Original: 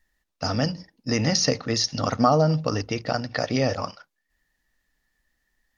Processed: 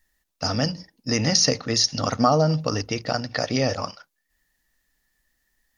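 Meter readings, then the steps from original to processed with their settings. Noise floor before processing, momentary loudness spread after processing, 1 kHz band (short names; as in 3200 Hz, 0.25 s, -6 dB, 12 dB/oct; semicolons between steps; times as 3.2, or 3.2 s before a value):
-78 dBFS, 9 LU, 0.0 dB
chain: high shelf 6000 Hz +9.5 dB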